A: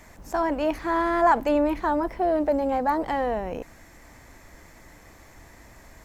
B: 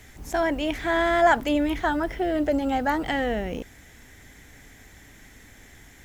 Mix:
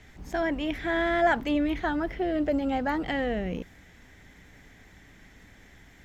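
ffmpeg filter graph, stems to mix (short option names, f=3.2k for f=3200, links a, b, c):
-filter_complex "[0:a]agate=range=-33dB:threshold=-45dB:ratio=3:detection=peak,highshelf=f=10k:g=10,volume=-15.5dB[a];[1:a]lowpass=4.8k,volume=-3.5dB[b];[a][b]amix=inputs=2:normalize=0,equalizer=f=180:t=o:w=0.25:g=6"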